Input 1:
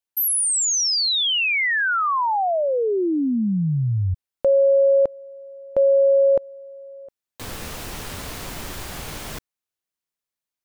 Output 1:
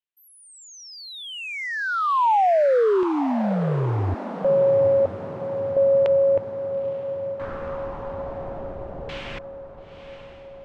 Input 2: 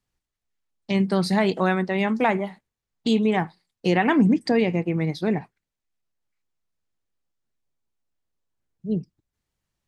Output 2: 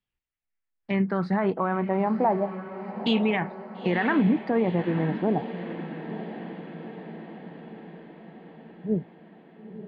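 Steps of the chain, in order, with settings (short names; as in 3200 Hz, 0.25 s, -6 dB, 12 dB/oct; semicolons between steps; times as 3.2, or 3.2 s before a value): LFO low-pass saw down 0.33 Hz 540–3000 Hz; spectral noise reduction 7 dB; limiter -12 dBFS; on a send: diffused feedback echo 0.931 s, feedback 60%, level -11.5 dB; on the sum: gain -2.5 dB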